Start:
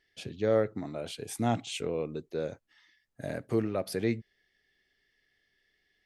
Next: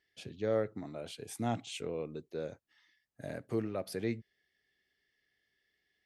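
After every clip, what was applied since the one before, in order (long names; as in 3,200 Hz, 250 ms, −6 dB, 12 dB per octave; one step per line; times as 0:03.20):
high-pass filter 52 Hz
level −5.5 dB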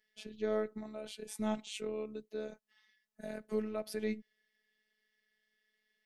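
phases set to zero 215 Hz
level +1 dB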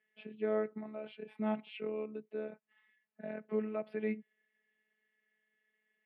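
elliptic band-pass filter 160–2,600 Hz, stop band 40 dB
level +1 dB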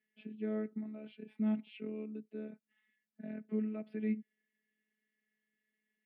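octave-band graphic EQ 250/500/1,000 Hz +11/−5/−9 dB
level −4.5 dB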